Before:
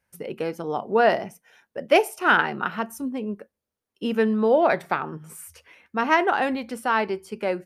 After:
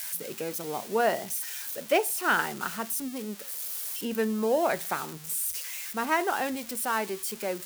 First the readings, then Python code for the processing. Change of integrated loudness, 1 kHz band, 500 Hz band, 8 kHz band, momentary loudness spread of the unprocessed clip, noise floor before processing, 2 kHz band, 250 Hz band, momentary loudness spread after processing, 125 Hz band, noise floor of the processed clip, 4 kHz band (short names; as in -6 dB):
-6.0 dB, -6.5 dB, -6.5 dB, +11.5 dB, 18 LU, under -85 dBFS, -6.0 dB, -6.5 dB, 8 LU, -6.5 dB, -43 dBFS, -2.5 dB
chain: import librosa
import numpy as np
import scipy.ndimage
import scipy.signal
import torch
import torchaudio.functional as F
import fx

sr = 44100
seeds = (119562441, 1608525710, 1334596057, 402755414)

y = x + 0.5 * 10.0 ** (-20.5 / 20.0) * np.diff(np.sign(x), prepend=np.sign(x[:1]))
y = y * 10.0 ** (-6.5 / 20.0)